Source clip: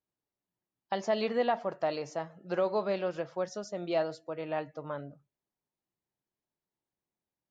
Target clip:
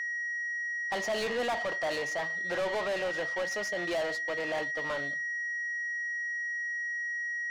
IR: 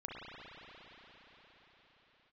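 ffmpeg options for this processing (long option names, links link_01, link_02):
-filter_complex "[0:a]aeval=exprs='val(0)+0.00794*sin(2*PI*1900*n/s)':channel_layout=same,asplit=2[link_01][link_02];[link_02]highpass=frequency=720:poles=1,volume=26dB,asoftclip=type=tanh:threshold=-17.5dB[link_03];[link_01][link_03]amix=inputs=2:normalize=0,lowpass=frequency=6300:poles=1,volume=-6dB,volume=-7dB"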